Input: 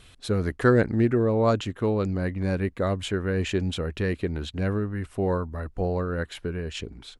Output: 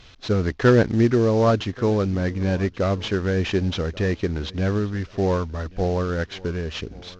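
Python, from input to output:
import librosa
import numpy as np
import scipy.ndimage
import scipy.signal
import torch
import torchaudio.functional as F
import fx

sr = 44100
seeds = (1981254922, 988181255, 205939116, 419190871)

p1 = fx.cvsd(x, sr, bps=32000)
p2 = p1 + fx.echo_feedback(p1, sr, ms=1134, feedback_pct=29, wet_db=-22.5, dry=0)
y = p2 * 10.0 ** (4.0 / 20.0)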